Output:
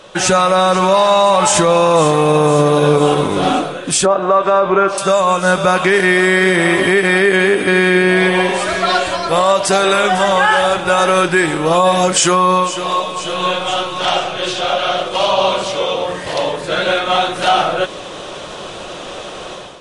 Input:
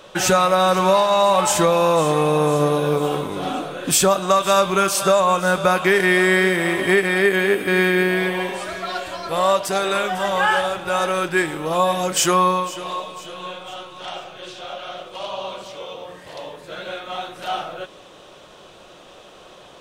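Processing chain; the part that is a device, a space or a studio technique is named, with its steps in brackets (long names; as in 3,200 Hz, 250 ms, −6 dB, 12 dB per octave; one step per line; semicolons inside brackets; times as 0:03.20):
0:04.05–0:04.98: drawn EQ curve 180 Hz 0 dB, 410 Hz +9 dB, 1,600 Hz +5 dB, 14,000 Hz −30 dB
low-bitrate web radio (automatic gain control gain up to 12 dB; brickwall limiter −7.5 dBFS, peak gain reduction 7 dB; level +4.5 dB; MP3 48 kbit/s 32,000 Hz)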